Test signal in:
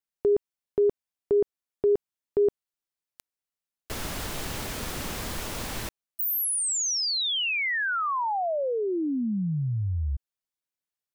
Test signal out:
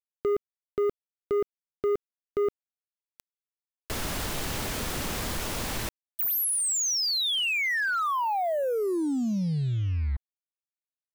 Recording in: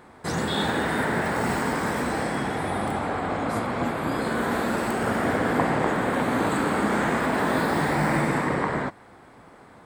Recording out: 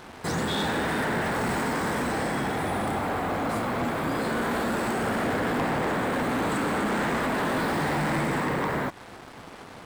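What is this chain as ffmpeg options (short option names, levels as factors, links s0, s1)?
-filter_complex "[0:a]asplit=2[s0][s1];[s1]acompressor=threshold=0.0126:ratio=6:release=99:detection=rms,volume=0.841[s2];[s0][s2]amix=inputs=2:normalize=0,acrusher=bits=6:mix=0:aa=0.5,asoftclip=type=tanh:threshold=0.0794"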